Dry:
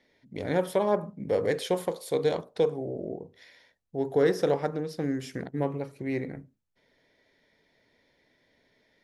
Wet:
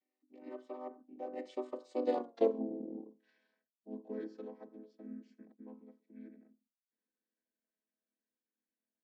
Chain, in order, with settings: chord vocoder minor triad, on A#3; Doppler pass-by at 2.33, 29 m/s, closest 7.2 m; gain -1 dB

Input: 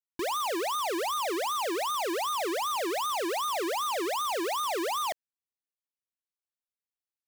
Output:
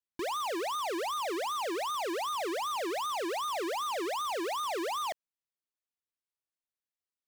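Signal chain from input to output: high shelf 8700 Hz -6.5 dB; gain -3 dB

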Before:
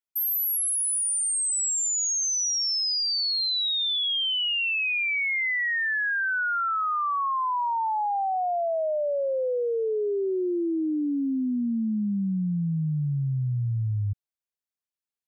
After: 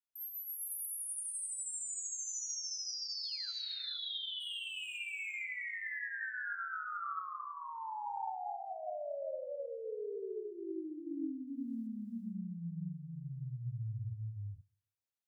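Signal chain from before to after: limiter -34 dBFS, peak gain reduction 11 dB; 3.09–3.51 painted sound fall 1300–7100 Hz -52 dBFS; 4.4–4.97 hard clip -37.5 dBFS, distortion -26 dB; flange 0.14 Hz, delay 7.6 ms, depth 8.3 ms, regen -24%; 11.47–11.87 short-mantissa float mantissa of 6-bit; on a send: thinning echo 0.134 s, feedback 56%, high-pass 260 Hz, level -18 dB; on the sum: non-linear reverb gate 0.49 s rising, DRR 0 dB; gain -3.5 dB

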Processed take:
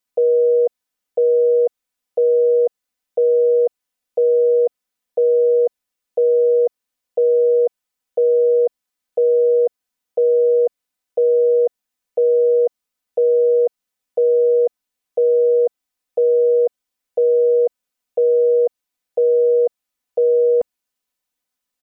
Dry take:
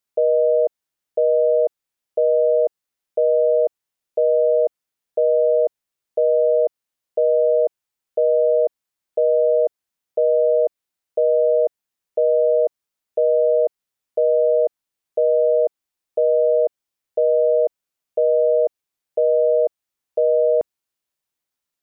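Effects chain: comb 4 ms, depth 87%

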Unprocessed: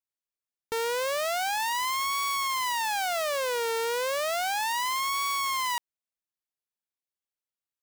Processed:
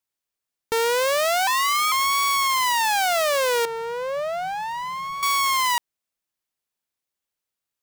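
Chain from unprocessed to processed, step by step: 1.47–1.92 frequency shift +210 Hz; 3.65–5.23 EQ curve 120 Hz 0 dB, 170 Hz +12 dB, 270 Hz -19 dB, 570 Hz -3 dB, 12000 Hz -24 dB; gain +7.5 dB

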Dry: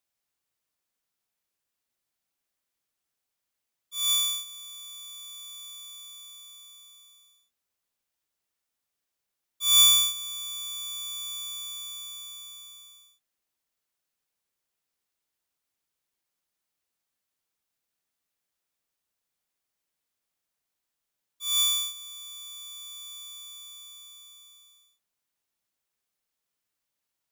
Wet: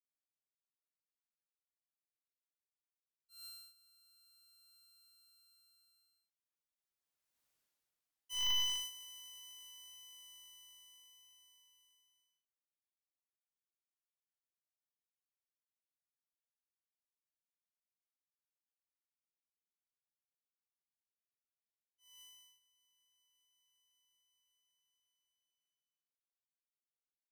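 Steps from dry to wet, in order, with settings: Doppler pass-by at 7.49, 55 m/s, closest 9.7 m; slew limiter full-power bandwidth 85 Hz; gain +1 dB

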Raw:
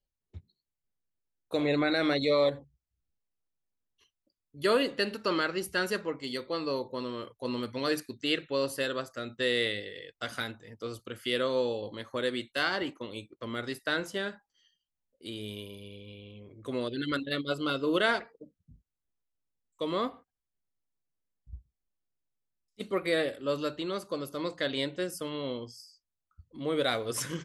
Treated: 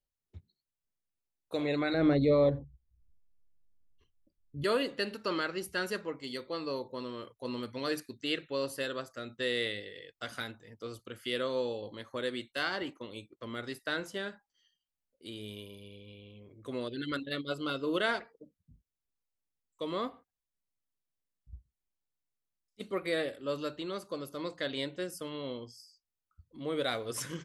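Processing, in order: 1.94–4.64 tilt -4.5 dB/oct; gain -4 dB

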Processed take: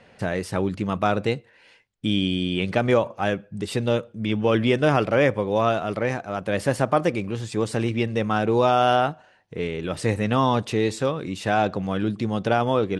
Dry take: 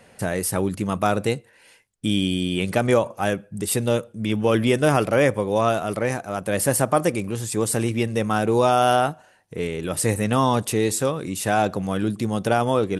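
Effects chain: Chebyshev low-pass 3900 Hz, order 2

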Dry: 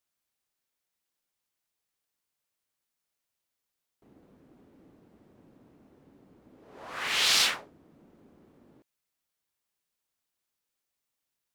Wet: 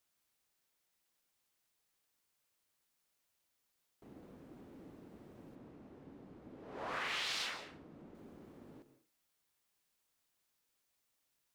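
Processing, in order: 5.55–8.15 high shelf 6300 Hz -11.5 dB; compressor 8:1, threshold -40 dBFS, peak gain reduction 16.5 dB; reverb RT60 0.40 s, pre-delay 0.12 s, DRR 11.5 dB; gain +3 dB

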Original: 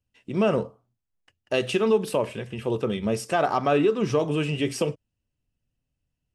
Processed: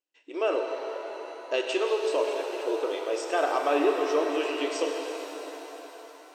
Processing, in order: brick-wall FIR band-pass 280–8400 Hz; shimmer reverb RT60 4 s, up +7 st, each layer -8 dB, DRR 2.5 dB; gain -3.5 dB

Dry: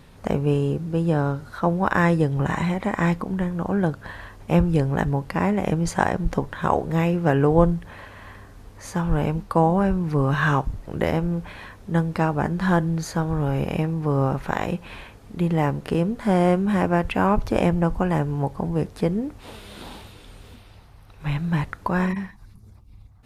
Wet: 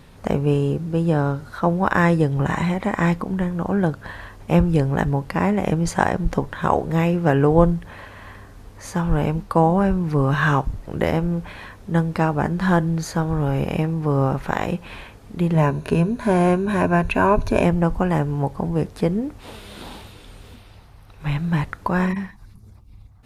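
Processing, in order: 15.54–17.64 ripple EQ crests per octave 1.5, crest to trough 10 dB; gain +2 dB

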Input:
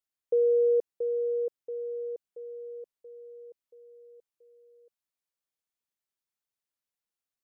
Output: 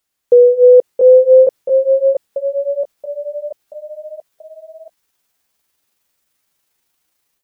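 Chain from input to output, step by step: gliding pitch shift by +8 st starting unshifted; AGC gain up to 9 dB; maximiser +17 dB; gain -1 dB

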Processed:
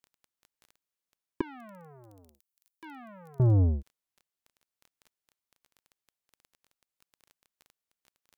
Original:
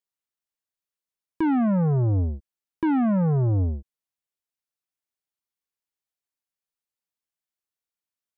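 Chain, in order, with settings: crackle 11/s -41 dBFS; 1.41–3.4 differentiator

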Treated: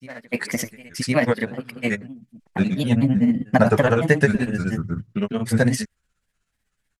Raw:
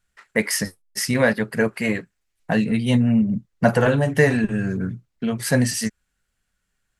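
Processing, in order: reverse echo 1.067 s -20 dB; grains, grains 16/s, pitch spread up and down by 3 st; gain +1.5 dB

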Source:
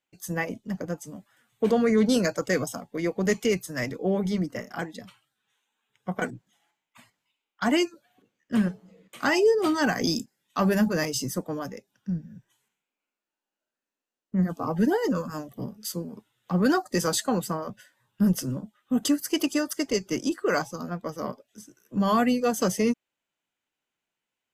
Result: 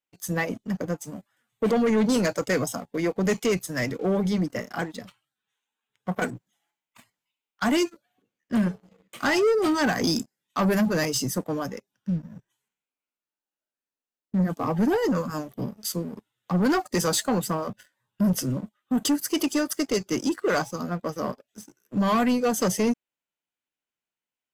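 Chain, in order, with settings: 6.14–7.84 high shelf 8800 Hz +6.5 dB; sample leveller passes 2; gain -4 dB

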